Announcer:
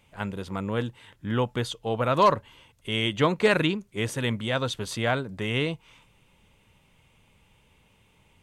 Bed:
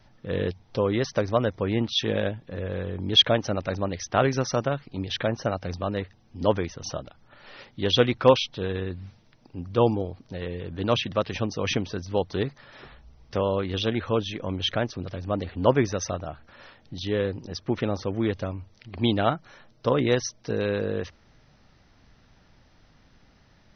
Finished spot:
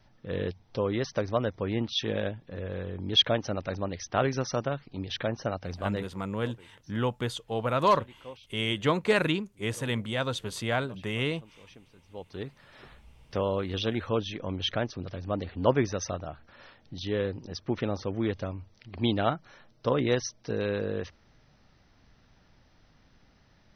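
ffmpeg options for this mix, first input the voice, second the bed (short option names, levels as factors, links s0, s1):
-filter_complex "[0:a]adelay=5650,volume=0.708[s0];[1:a]volume=8.91,afade=t=out:st=6.02:d=0.32:silence=0.0749894,afade=t=in:st=12.04:d=0.93:silence=0.0668344[s1];[s0][s1]amix=inputs=2:normalize=0"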